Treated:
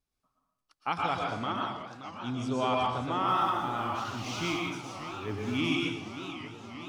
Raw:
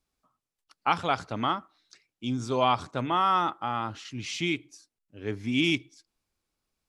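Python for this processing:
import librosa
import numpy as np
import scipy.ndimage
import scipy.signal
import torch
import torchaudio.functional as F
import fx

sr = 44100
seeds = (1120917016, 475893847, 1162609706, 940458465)

y = fx.law_mismatch(x, sr, coded='mu', at=(3.28, 5.57))
y = fx.low_shelf(y, sr, hz=180.0, db=4.0)
y = fx.notch(y, sr, hz=7300.0, q=21.0)
y = fx.rev_plate(y, sr, seeds[0], rt60_s=0.76, hf_ratio=0.9, predelay_ms=100, drr_db=-1.0)
y = fx.vibrato(y, sr, rate_hz=0.86, depth_cents=8.1)
y = fx.echo_warbled(y, sr, ms=581, feedback_pct=74, rate_hz=2.8, cents=203, wet_db=-12)
y = y * 10.0 ** (-7.0 / 20.0)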